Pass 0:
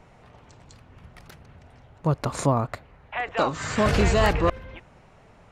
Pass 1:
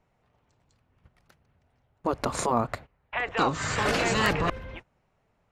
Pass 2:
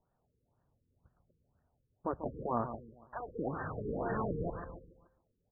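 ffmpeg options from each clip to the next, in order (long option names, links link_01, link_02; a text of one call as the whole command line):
ffmpeg -i in.wav -af "agate=range=-19dB:threshold=-42dB:ratio=16:detection=peak,afftfilt=real='re*lt(hypot(re,im),0.447)':imag='im*lt(hypot(re,im),0.447)':win_size=1024:overlap=0.75,volume=1dB" out.wav
ffmpeg -i in.wav -filter_complex "[0:a]asplit=2[link_01][link_02];[link_02]adelay=143,lowpass=frequency=3900:poles=1,volume=-10.5dB,asplit=2[link_03][link_04];[link_04]adelay=143,lowpass=frequency=3900:poles=1,volume=0.41,asplit=2[link_05][link_06];[link_06]adelay=143,lowpass=frequency=3900:poles=1,volume=0.41,asplit=2[link_07][link_08];[link_08]adelay=143,lowpass=frequency=3900:poles=1,volume=0.41[link_09];[link_01][link_03][link_05][link_07][link_09]amix=inputs=5:normalize=0,afftfilt=real='re*lt(b*sr/1024,500*pow(1900/500,0.5+0.5*sin(2*PI*2*pts/sr)))':imag='im*lt(b*sr/1024,500*pow(1900/500,0.5+0.5*sin(2*PI*2*pts/sr)))':win_size=1024:overlap=0.75,volume=-8.5dB" out.wav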